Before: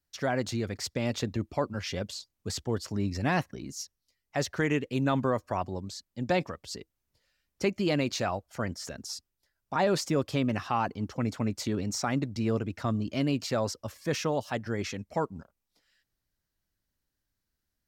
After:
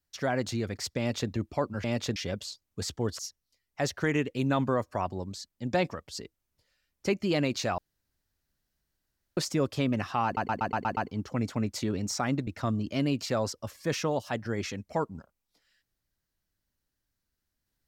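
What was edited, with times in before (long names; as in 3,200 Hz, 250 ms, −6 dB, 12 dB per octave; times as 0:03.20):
0:00.98–0:01.30: duplicate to 0:01.84
0:02.87–0:03.75: remove
0:08.34–0:09.93: fill with room tone
0:10.81: stutter 0.12 s, 7 plays
0:12.31–0:12.68: remove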